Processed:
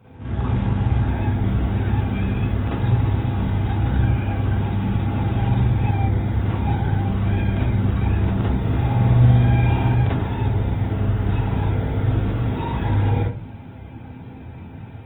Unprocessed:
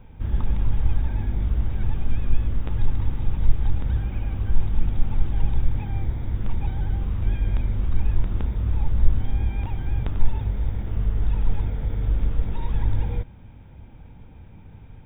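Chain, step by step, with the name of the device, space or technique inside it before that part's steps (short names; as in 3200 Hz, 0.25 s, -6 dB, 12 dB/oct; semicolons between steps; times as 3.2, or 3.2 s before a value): 8.51–9.9 flutter echo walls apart 9.9 m, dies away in 1.3 s; far-field microphone of a smart speaker (reverb RT60 0.35 s, pre-delay 38 ms, DRR -8 dB; HPF 89 Hz 24 dB/oct; AGC gain up to 3 dB; Opus 24 kbps 48000 Hz)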